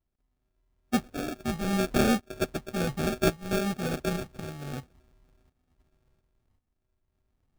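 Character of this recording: a buzz of ramps at a fixed pitch in blocks of 32 samples; tremolo saw up 0.91 Hz, depth 75%; phasing stages 4, 1.1 Hz, lowest notch 410–1100 Hz; aliases and images of a low sample rate 1 kHz, jitter 0%

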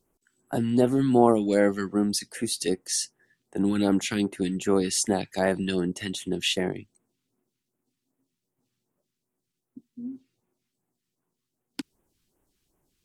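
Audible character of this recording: phasing stages 2, 2.6 Hz, lowest notch 610–4300 Hz

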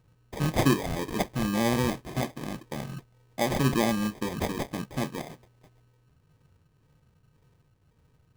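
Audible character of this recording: phasing stages 6, 1.9 Hz, lowest notch 790–1900 Hz; aliases and images of a low sample rate 1.4 kHz, jitter 0%

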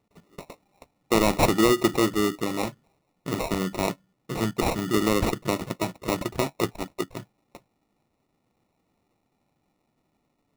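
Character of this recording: aliases and images of a low sample rate 1.6 kHz, jitter 0%

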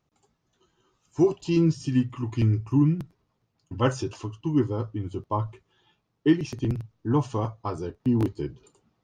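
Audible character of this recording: noise floor -76 dBFS; spectral tilt -7.0 dB/octave

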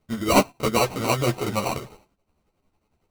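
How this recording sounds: tremolo triangle 11 Hz, depth 65%; aliases and images of a low sample rate 1.7 kHz, jitter 0%; a shimmering, thickened sound

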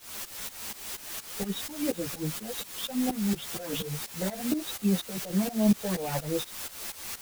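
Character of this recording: phasing stages 8, 2.7 Hz, lowest notch 300–1800 Hz; a quantiser's noise floor 6-bit, dither triangular; tremolo saw up 4.2 Hz, depth 90%; a shimmering, thickened sound

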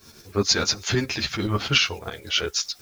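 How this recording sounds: a quantiser's noise floor 10-bit, dither triangular; tremolo saw up 9.6 Hz, depth 65%; a shimmering, thickened sound

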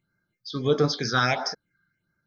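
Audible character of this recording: phasing stages 6, 1.5 Hz, lowest notch 630–3000 Hz

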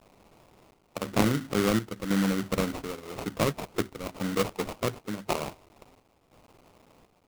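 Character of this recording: a quantiser's noise floor 10-bit, dither triangular; chopped level 0.95 Hz, depth 60%, duty 70%; aliases and images of a low sample rate 1.7 kHz, jitter 20%

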